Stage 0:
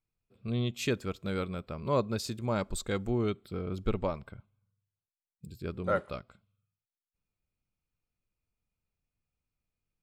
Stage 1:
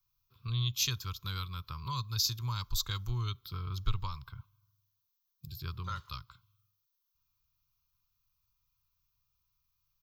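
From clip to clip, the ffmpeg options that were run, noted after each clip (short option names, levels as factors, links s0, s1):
-filter_complex "[0:a]firequalizer=gain_entry='entry(130,0);entry(210,-19);entry(350,-15);entry(640,-25);entry(1000,8);entry(1900,-7);entry(3400,5);entry(6200,9);entry(8900,-20);entry(13000,14)':delay=0.05:min_phase=1,acrossover=split=130|3000[s0][s1][s2];[s1]acompressor=threshold=0.00355:ratio=3[s3];[s0][s3][s2]amix=inputs=3:normalize=0,volume=1.58"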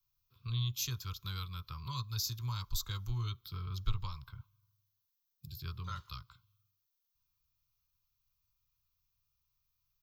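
-filter_complex "[0:a]acrossover=split=240|1700|6300[s0][s1][s2][s3];[s1]flanger=delay=15.5:depth=2.1:speed=2.4[s4];[s2]alimiter=level_in=2.11:limit=0.0631:level=0:latency=1:release=147,volume=0.473[s5];[s0][s4][s5][s3]amix=inputs=4:normalize=0,volume=0.794"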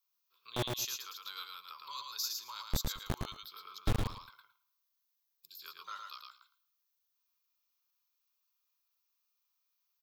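-filter_complex "[0:a]acrossover=split=460[s0][s1];[s0]acrusher=bits=4:mix=0:aa=0.000001[s2];[s2][s1]amix=inputs=2:normalize=0,aecho=1:1:111|222|333:0.631|0.101|0.0162"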